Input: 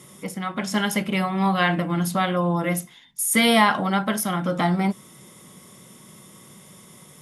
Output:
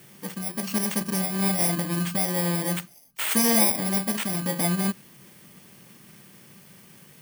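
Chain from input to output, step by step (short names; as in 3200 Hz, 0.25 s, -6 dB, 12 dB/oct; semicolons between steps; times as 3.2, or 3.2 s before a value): FFT order left unsorted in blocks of 32 samples; gain -3 dB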